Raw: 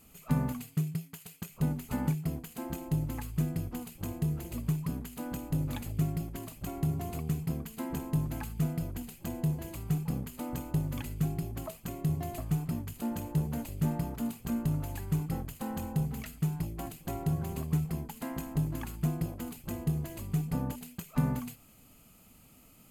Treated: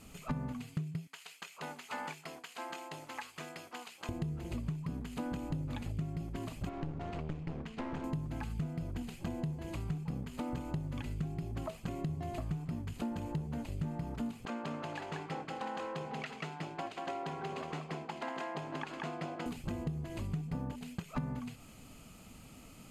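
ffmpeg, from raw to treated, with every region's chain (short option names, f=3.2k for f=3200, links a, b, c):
-filter_complex "[0:a]asettb=1/sr,asplit=3[a][b][c];[a]atrim=end=1.074[d];[b]atrim=start=1.07:end=4.09,asetpts=PTS-STARTPTS,afade=t=in:d=0.004:c=qsin,afade=t=out:st=3.016:d=0.004:c=qsin,acrossover=split=6000[e][f];[f]acompressor=threshold=-56dB:ratio=4:attack=1:release=60[g];[e][g]amix=inputs=2:normalize=0,highpass=860[h];[c]atrim=start=4.086[i];[d][h]acrossfade=d=0.004:c1=hsin:c2=qsin[j];[j][i]acrossfade=d=0.004:c1=qsin:c2=hsin,asettb=1/sr,asplit=3[k][l][m];[k]atrim=end=6.694[n];[l]atrim=start=6.69:end=8.04,asetpts=PTS-STARTPTS,afade=t=in:d=0.004:c=qsin,afade=t=out:st=1.346:d=0.004:c=qsin,lowpass=3k,lowshelf=f=330:g=-5.5,aeval=exprs='clip(val(0),-1,0.00596)':c=same[o];[m]atrim=start=8.036[p];[n][o]acrossfade=d=0.004:c1=hsin:c2=qsin[q];[q][p]acrossfade=d=0.004:c1=qsin:c2=hsin,asettb=1/sr,asplit=3[r][s][t];[r]atrim=end=14.454[u];[s]atrim=start=14.45:end=19.46,asetpts=PTS-STARTPTS,afade=t=in:d=0.004:c=qsin,afade=t=out:st=5.006:d=0.004:c=qsin,highpass=520,lowpass=3.8k,aecho=1:1:185:0.708,atrim=end_sample=220941[v];[t]atrim=start=19.456[w];[u][v]acrossfade=d=0.004:c1=hsin:c2=qsin[x];[x][w]acrossfade=d=0.004:c1=qsin:c2=hsin,acrossover=split=4400[y][z];[z]acompressor=threshold=-53dB:ratio=4:attack=1:release=60[aa];[y][aa]amix=inputs=2:normalize=0,lowpass=7.7k,acompressor=threshold=-41dB:ratio=6,volume=6dB"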